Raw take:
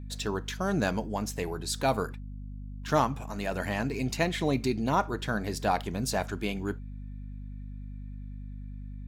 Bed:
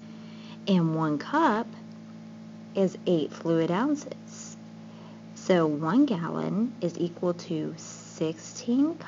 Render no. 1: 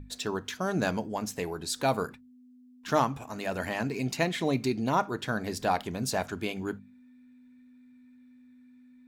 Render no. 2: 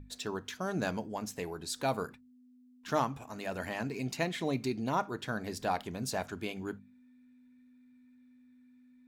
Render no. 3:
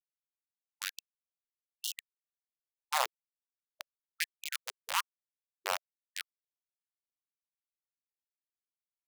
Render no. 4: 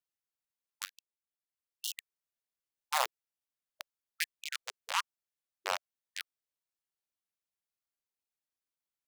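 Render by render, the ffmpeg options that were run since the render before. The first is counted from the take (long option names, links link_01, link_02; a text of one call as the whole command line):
ffmpeg -i in.wav -af "bandreject=frequency=50:width_type=h:width=6,bandreject=frequency=100:width_type=h:width=6,bandreject=frequency=150:width_type=h:width=6,bandreject=frequency=200:width_type=h:width=6" out.wav
ffmpeg -i in.wav -af "volume=-5dB" out.wav
ffmpeg -i in.wav -af "acrusher=bits=3:mix=0:aa=0.000001,afftfilt=real='re*gte(b*sr/1024,350*pow(2800/350,0.5+0.5*sin(2*PI*1.2*pts/sr)))':imag='im*gte(b*sr/1024,350*pow(2800/350,0.5+0.5*sin(2*PI*1.2*pts/sr)))':win_size=1024:overlap=0.75" out.wav
ffmpeg -i in.wav -filter_complex "[0:a]asettb=1/sr,asplit=3[link_01][link_02][link_03];[link_01]atrim=end=4.344[link_04];[link_02]atrim=start=4.34:end=6.2,asetpts=PTS-STARTPTS,afade=type=in:duration=0.004:curve=qsin,afade=type=out:start_time=1.856:duration=0.004:curve=qsin,acrossover=split=8900[link_05][link_06];[link_06]acompressor=threshold=-46dB:ratio=4:attack=1:release=60[link_07];[link_05][link_07]amix=inputs=2:normalize=0[link_08];[link_03]atrim=start=6.196[link_09];[link_04][link_08]acrossfade=duration=0.004:curve1=hsin:curve2=qsin[link_10];[link_10][link_09]acrossfade=duration=0.004:curve1=qsin:curve2=hsin,asplit=2[link_11][link_12];[link_11]atrim=end=0.86,asetpts=PTS-STARTPTS,afade=type=out:start_time=0.856:duration=0.004:curve=hsin:silence=0.133352[link_13];[link_12]atrim=start=0.86,asetpts=PTS-STARTPTS,afade=type=in:duration=1.09:silence=0.133352[link_14];[link_13][link_14]concat=n=2:v=0:a=1" out.wav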